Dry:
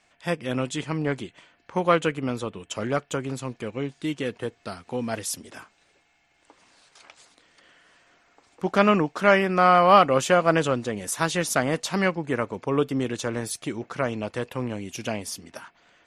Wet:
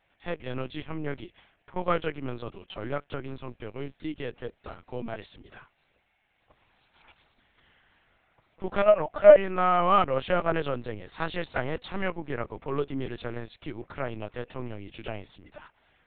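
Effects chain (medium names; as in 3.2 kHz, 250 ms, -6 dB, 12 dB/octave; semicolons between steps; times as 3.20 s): 8.82–9.36 s: resonant high-pass 610 Hz, resonance Q 4.9; LPC vocoder at 8 kHz pitch kept; trim -6 dB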